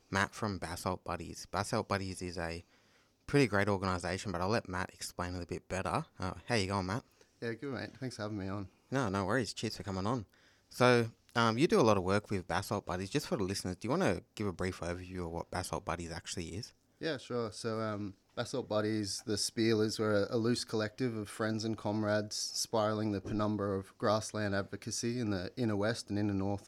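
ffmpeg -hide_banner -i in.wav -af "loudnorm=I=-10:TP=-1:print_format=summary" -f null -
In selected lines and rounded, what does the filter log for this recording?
Input Integrated:    -35.0 LUFS
Input True Peak:     -13.7 dBTP
Input LRA:             6.6 LU
Input Threshold:     -45.2 LUFS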